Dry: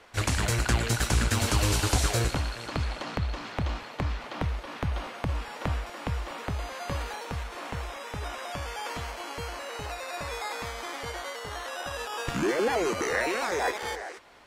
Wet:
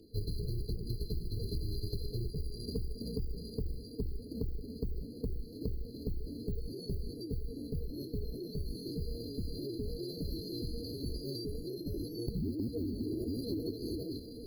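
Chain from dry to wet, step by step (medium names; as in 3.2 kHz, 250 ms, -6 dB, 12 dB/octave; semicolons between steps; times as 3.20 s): octave divider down 2 oct, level 0 dB; reverse; upward compressor, threshold -30 dBFS; reverse; FFT band-reject 690–4100 Hz; careless resampling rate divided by 4×, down filtered, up hold; formant shift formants -6 st; compression 8:1, threshold -34 dBFS, peak gain reduction 17 dB; trim +1.5 dB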